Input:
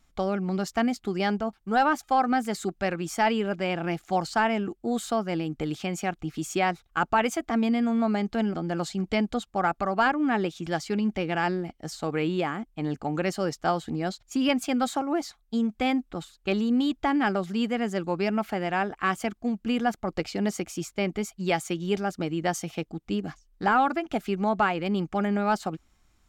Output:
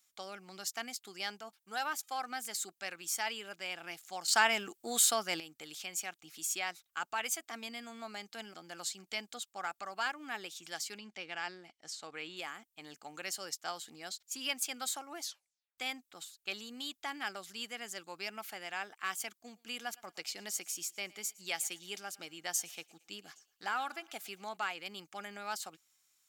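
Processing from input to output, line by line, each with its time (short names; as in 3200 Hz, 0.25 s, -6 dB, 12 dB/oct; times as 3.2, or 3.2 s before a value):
4.28–5.4 gain +10 dB
10.98–12.37 air absorption 67 m
15.22 tape stop 0.56 s
19.41–24.57 thinning echo 0.113 s, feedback 46%, level -22.5 dB
whole clip: differentiator; gain +3 dB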